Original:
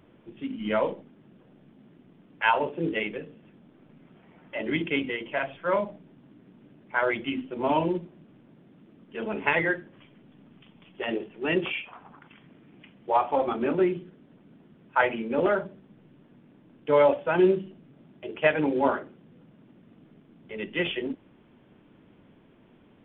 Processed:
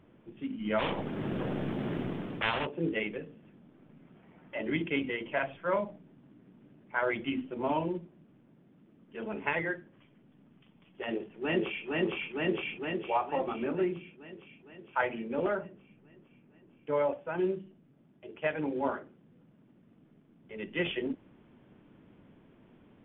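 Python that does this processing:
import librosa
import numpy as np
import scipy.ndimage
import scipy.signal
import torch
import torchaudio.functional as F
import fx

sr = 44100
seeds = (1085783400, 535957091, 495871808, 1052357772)

y = fx.spectral_comp(x, sr, ratio=4.0, at=(0.78, 2.65), fade=0.02)
y = fx.echo_throw(y, sr, start_s=11.02, length_s=0.84, ms=460, feedback_pct=70, wet_db=-1.0)
y = fx.lowpass(y, sr, hz=3100.0, slope=12, at=(15.57, 17.38))
y = fx.bass_treble(y, sr, bass_db=2, treble_db=-8)
y = fx.rider(y, sr, range_db=10, speed_s=0.5)
y = y * librosa.db_to_amplitude(-5.0)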